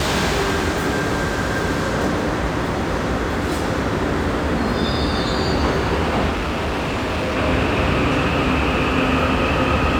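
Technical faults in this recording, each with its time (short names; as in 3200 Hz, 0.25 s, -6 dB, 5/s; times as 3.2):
6.31–7.37 clipped -19 dBFS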